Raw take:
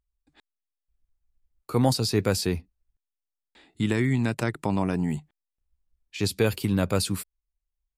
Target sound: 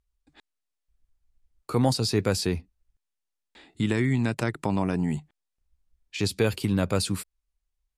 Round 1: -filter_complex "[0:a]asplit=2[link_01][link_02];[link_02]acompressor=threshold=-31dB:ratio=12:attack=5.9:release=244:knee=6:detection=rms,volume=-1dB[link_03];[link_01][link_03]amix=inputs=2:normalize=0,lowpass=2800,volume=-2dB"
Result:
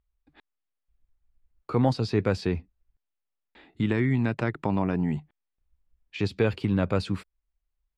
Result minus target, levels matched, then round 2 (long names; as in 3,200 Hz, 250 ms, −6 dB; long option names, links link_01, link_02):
8,000 Hz band −17.0 dB
-filter_complex "[0:a]asplit=2[link_01][link_02];[link_02]acompressor=threshold=-31dB:ratio=12:attack=5.9:release=244:knee=6:detection=rms,volume=-1dB[link_03];[link_01][link_03]amix=inputs=2:normalize=0,lowpass=11000,volume=-2dB"